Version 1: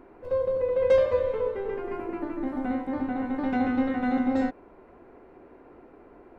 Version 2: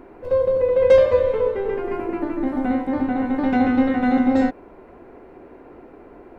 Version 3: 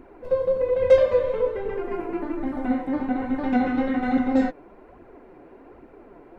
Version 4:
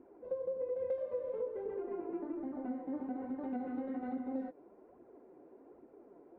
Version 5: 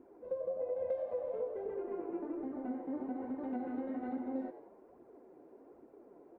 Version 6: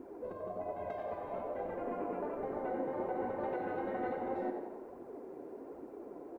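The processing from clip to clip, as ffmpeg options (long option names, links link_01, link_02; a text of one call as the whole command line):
ffmpeg -i in.wav -af "equalizer=frequency=1200:width_type=o:width=0.77:gain=-2,volume=7.5dB" out.wav
ffmpeg -i in.wav -af "flanger=delay=0.3:depth=6.9:regen=35:speed=1.2:shape=triangular" out.wav
ffmpeg -i in.wav -af "acompressor=threshold=-24dB:ratio=6,bandpass=frequency=400:width_type=q:width=0.9:csg=0,volume=-9dB" out.wav
ffmpeg -i in.wav -filter_complex "[0:a]asplit=5[link_01][link_02][link_03][link_04][link_05];[link_02]adelay=92,afreqshift=95,volume=-13dB[link_06];[link_03]adelay=184,afreqshift=190,volume=-20.7dB[link_07];[link_04]adelay=276,afreqshift=285,volume=-28.5dB[link_08];[link_05]adelay=368,afreqshift=380,volume=-36.2dB[link_09];[link_01][link_06][link_07][link_08][link_09]amix=inputs=5:normalize=0" out.wav
ffmpeg -i in.wav -af "afftfilt=real='re*lt(hypot(re,im),0.0562)':imag='im*lt(hypot(re,im),0.0562)':win_size=1024:overlap=0.75,aecho=1:1:92|184|276|368|460|552|644:0.316|0.183|0.106|0.0617|0.0358|0.0208|0.012,volume=9.5dB" out.wav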